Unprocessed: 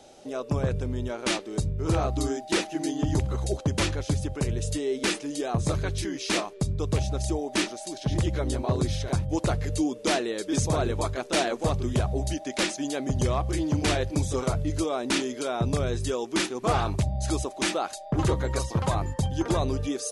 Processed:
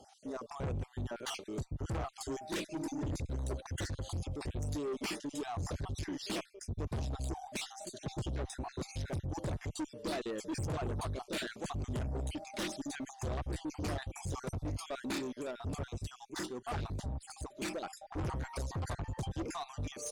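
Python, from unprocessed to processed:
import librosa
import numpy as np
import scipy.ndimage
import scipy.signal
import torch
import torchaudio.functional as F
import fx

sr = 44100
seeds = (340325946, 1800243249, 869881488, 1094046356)

y = fx.spec_dropout(x, sr, seeds[0], share_pct=41)
y = fx.highpass(y, sr, hz=68.0, slope=6)
y = fx.low_shelf(y, sr, hz=200.0, db=9.0)
y = fx.tube_stage(y, sr, drive_db=28.0, bias=0.2)
y = fx.upward_expand(y, sr, threshold_db=-42.0, expansion=1.5, at=(15.19, 17.82))
y = y * 10.0 ** (-5.5 / 20.0)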